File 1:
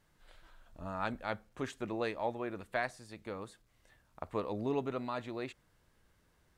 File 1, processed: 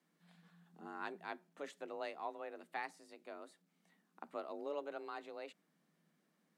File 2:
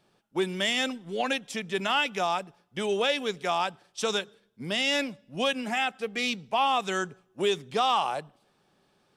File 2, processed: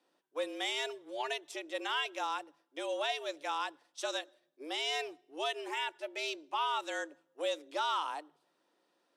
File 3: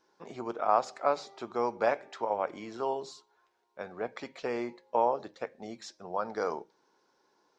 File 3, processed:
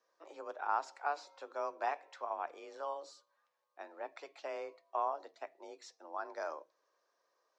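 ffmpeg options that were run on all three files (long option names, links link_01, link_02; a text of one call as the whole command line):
ffmpeg -i in.wav -af "afreqshift=150,volume=-8.5dB" out.wav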